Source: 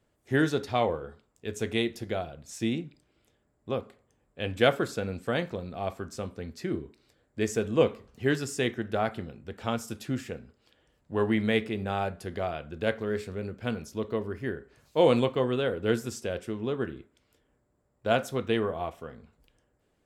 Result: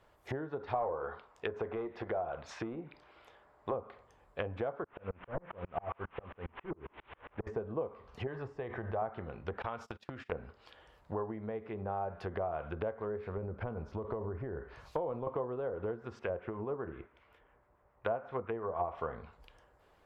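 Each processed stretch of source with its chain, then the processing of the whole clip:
0:00.74–0:03.74: hard clipping −19 dBFS + mid-hump overdrive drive 12 dB, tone 2,000 Hz, clips at −18.5 dBFS
0:04.84–0:07.47: linear delta modulator 16 kbit/s, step −45 dBFS + tremolo with a ramp in dB swelling 7.4 Hz, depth 37 dB
0:08.27–0:09.02: parametric band 270 Hz −9.5 dB 1.8 octaves + notch filter 1,400 Hz, Q 9 + envelope flattener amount 70%
0:09.62–0:10.32: noise gate −41 dBFS, range −29 dB + downward compressor 16 to 1, threshold −40 dBFS
0:13.37–0:15.27: downward compressor, threshold −31 dBFS + low-shelf EQ 120 Hz +7 dB
0:16.19–0:18.90: high shelf with overshoot 3,400 Hz −10.5 dB, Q 1.5 + two-band tremolo in antiphase 7.2 Hz, depth 50%, crossover 1,100 Hz
whole clip: downward compressor 16 to 1, threshold −37 dBFS; treble cut that deepens with the level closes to 760 Hz, closed at −37.5 dBFS; graphic EQ with 10 bands 125 Hz −5 dB, 250 Hz −9 dB, 1,000 Hz +8 dB, 8,000 Hz −10 dB; level +7 dB

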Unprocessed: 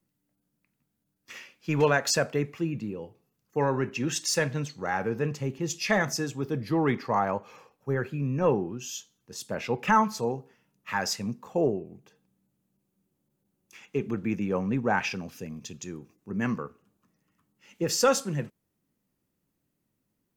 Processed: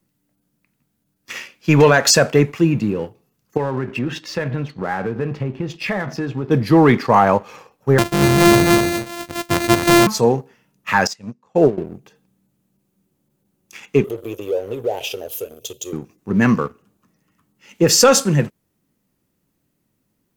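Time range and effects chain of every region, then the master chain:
0:03.57–0:06.51: high-frequency loss of the air 360 metres + downward compressor 4 to 1, threshold −34 dBFS + double-tracking delay 16 ms −12 dB
0:07.98–0:10.07: samples sorted by size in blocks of 128 samples + single-tap delay 253 ms −5.5 dB
0:11.07–0:11.78: low-pass filter 7,800 Hz + expander for the loud parts 2.5 to 1, over −35 dBFS
0:14.04–0:15.93: drawn EQ curve 120 Hz 0 dB, 180 Hz −28 dB, 420 Hz +7 dB, 610 Hz +7 dB, 1,300 Hz −30 dB, 2,100 Hz −22 dB, 3,100 Hz +6 dB, 5,000 Hz −7 dB, 12,000 Hz +15 dB + downward compressor 2 to 1, threshold −39 dBFS + high-pass filter 240 Hz 6 dB per octave
whole clip: leveller curve on the samples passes 1; boost into a limiter +13 dB; level −2.5 dB

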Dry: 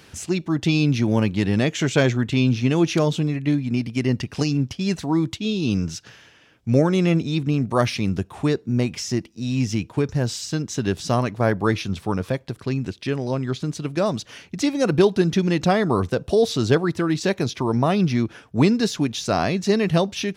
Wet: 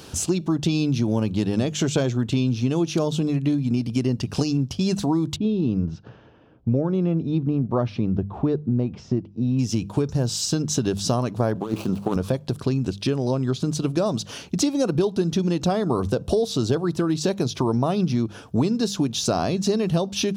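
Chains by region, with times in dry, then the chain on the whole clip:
0:05.36–0:09.59: head-to-tape spacing loss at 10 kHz 36 dB + one half of a high-frequency compander decoder only
0:11.55–0:12.16: running median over 25 samples + high-pass filter 190 Hz + compressor whose output falls as the input rises −26 dBFS, ratio −0.5
whole clip: parametric band 2,000 Hz −12.5 dB 0.77 octaves; mains-hum notches 50/100/150/200 Hz; downward compressor 5 to 1, threshold −28 dBFS; level +8.5 dB

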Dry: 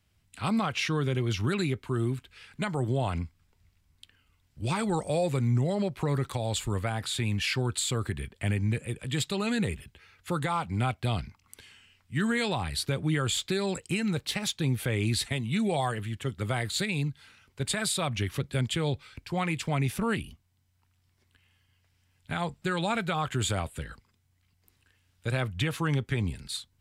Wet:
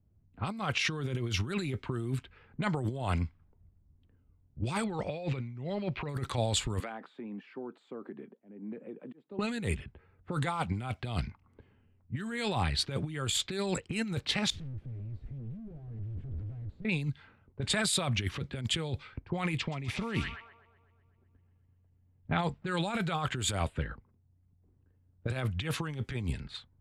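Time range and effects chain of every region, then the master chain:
0:04.84–0:06.09: low-pass filter 4,800 Hz 24 dB per octave + parametric band 2,500 Hz +7 dB 0.61 octaves
0:06.80–0:09.39: Butterworth high-pass 210 Hz + downward compressor 4 to 1, threshold −41 dBFS + volume swells 285 ms
0:14.50–0:16.85: sign of each sample alone + guitar amp tone stack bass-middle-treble 10-0-1
0:19.57–0:22.39: low-pass filter 4,700 Hz + notch filter 1,500 Hz + delay with a high-pass on its return 125 ms, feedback 72%, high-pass 2,200 Hz, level −4 dB
whole clip: low-pass that shuts in the quiet parts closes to 430 Hz, open at −24.5 dBFS; compressor whose output falls as the input rises −31 dBFS, ratio −0.5

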